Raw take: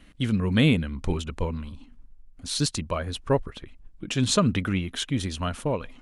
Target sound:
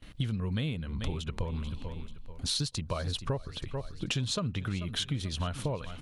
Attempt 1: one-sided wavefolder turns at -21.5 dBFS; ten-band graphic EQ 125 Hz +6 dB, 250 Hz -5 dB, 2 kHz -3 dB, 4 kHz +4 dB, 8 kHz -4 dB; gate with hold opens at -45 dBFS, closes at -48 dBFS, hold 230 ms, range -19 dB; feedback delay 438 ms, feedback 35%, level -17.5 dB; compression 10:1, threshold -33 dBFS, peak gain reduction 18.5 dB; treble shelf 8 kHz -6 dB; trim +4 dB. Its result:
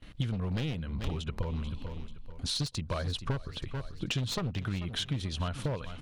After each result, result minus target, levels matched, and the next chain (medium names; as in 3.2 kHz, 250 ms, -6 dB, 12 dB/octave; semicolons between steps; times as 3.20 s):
one-sided wavefolder: distortion +32 dB; 8 kHz band -3.0 dB
one-sided wavefolder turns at -11 dBFS; ten-band graphic EQ 125 Hz +6 dB, 250 Hz -5 dB, 2 kHz -3 dB, 4 kHz +4 dB, 8 kHz -4 dB; gate with hold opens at -45 dBFS, closes at -48 dBFS, hold 230 ms, range -19 dB; feedback delay 438 ms, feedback 35%, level -17.5 dB; compression 10:1, threshold -33 dBFS, peak gain reduction 19 dB; treble shelf 8 kHz -6 dB; trim +4 dB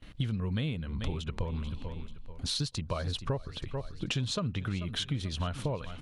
8 kHz band -3.0 dB
one-sided wavefolder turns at -11 dBFS; ten-band graphic EQ 125 Hz +6 dB, 250 Hz -5 dB, 2 kHz -3 dB, 4 kHz +4 dB, 8 kHz -4 dB; gate with hold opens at -45 dBFS, closes at -48 dBFS, hold 230 ms, range -19 dB; feedback delay 438 ms, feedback 35%, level -17.5 dB; compression 10:1, threshold -33 dBFS, peak gain reduction 19 dB; treble shelf 8 kHz +2 dB; trim +4 dB